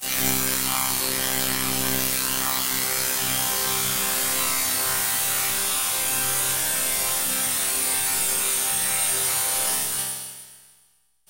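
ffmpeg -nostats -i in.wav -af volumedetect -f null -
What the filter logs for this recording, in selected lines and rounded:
mean_volume: -24.4 dB
max_volume: -4.9 dB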